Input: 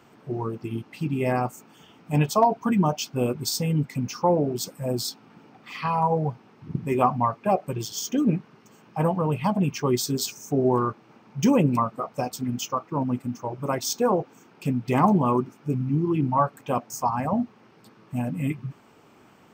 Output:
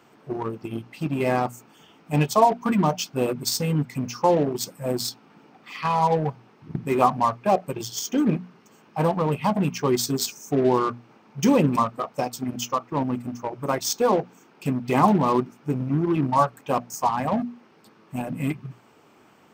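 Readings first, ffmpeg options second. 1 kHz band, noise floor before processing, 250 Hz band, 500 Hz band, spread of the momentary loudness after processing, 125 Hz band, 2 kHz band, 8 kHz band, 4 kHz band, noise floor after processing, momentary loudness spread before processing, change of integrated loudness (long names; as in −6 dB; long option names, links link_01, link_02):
+2.0 dB, −55 dBFS, +0.5 dB, +2.0 dB, 12 LU, −1.0 dB, +3.0 dB, +1.5 dB, +2.0 dB, −56 dBFS, 11 LU, +1.5 dB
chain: -filter_complex "[0:a]asplit=2[link_01][link_02];[link_02]acrusher=bits=3:mix=0:aa=0.5,volume=-10dB[link_03];[link_01][link_03]amix=inputs=2:normalize=0,lowshelf=frequency=120:gain=-6.5,bandreject=frequency=60:width_type=h:width=6,bandreject=frequency=120:width_type=h:width=6,bandreject=frequency=180:width_type=h:width=6,bandreject=frequency=240:width_type=h:width=6"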